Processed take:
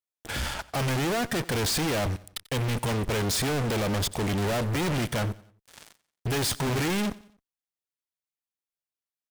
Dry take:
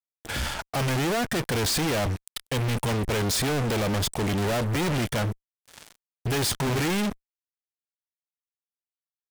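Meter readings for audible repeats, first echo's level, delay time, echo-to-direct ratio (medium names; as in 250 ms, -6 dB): 2, -20.5 dB, 90 ms, -19.5 dB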